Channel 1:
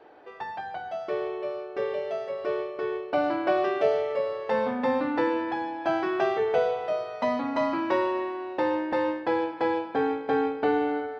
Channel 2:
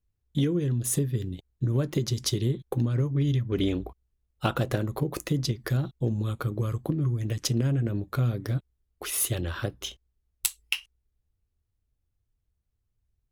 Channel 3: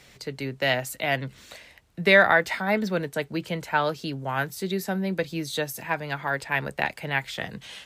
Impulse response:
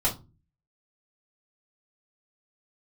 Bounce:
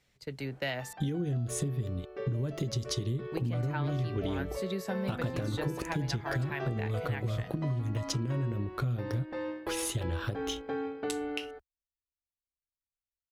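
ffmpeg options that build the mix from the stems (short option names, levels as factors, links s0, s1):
-filter_complex "[0:a]equalizer=f=810:w=1.5:g=-3.5,bandreject=f=900:w=13,acompressor=mode=upward:threshold=0.00447:ratio=2.5,adelay=400,volume=0.376[s0];[1:a]agate=range=0.0178:threshold=0.00224:ratio=16:detection=peak,adelay=650,volume=0.944[s1];[2:a]agate=range=0.224:threshold=0.0112:ratio=16:detection=peak,volume=0.447,asplit=3[s2][s3][s4];[s2]atrim=end=0.93,asetpts=PTS-STARTPTS,afade=t=out:st=0.926:d=0.004:c=hsin[s5];[s3]atrim=start=0.93:end=3.32,asetpts=PTS-STARTPTS,volume=0[s6];[s4]atrim=start=3.32,asetpts=PTS-STARTPTS,afade=t=in:d=0.004:c=hsin[s7];[s5][s6][s7]concat=n=3:v=0:a=1[s8];[s1][s8]amix=inputs=2:normalize=0,acrossover=split=9200[s9][s10];[s10]acompressor=threshold=0.00251:ratio=4:attack=1:release=60[s11];[s9][s11]amix=inputs=2:normalize=0,alimiter=limit=0.133:level=0:latency=1:release=170,volume=1[s12];[s0][s12]amix=inputs=2:normalize=0,lowshelf=f=140:g=6.5,acompressor=threshold=0.0355:ratio=6"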